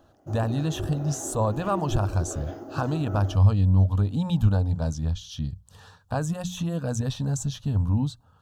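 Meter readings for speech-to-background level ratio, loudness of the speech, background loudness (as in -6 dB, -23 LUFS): 12.0 dB, -26.0 LUFS, -38.0 LUFS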